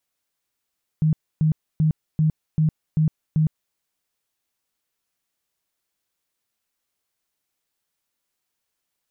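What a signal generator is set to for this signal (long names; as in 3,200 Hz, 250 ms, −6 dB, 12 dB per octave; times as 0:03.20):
tone bursts 156 Hz, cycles 17, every 0.39 s, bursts 7, −15 dBFS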